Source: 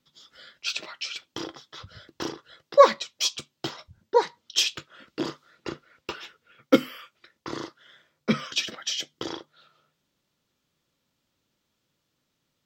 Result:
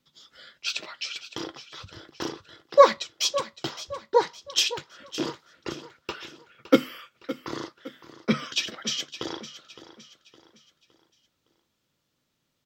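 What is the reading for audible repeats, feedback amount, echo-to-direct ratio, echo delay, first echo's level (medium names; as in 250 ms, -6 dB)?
3, 40%, -14.0 dB, 563 ms, -14.5 dB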